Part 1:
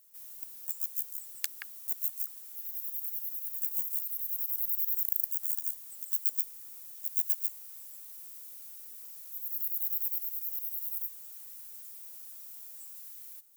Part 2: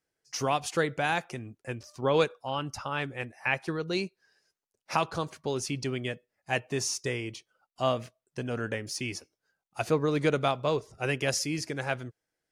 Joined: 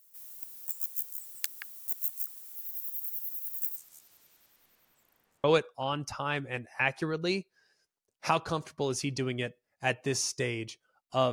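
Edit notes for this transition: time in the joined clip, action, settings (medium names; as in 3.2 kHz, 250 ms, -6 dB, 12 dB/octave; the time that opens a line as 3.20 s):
part 1
3.75–5.44 s: low-pass 7.1 kHz -> 1.5 kHz
5.44 s: go over to part 2 from 2.10 s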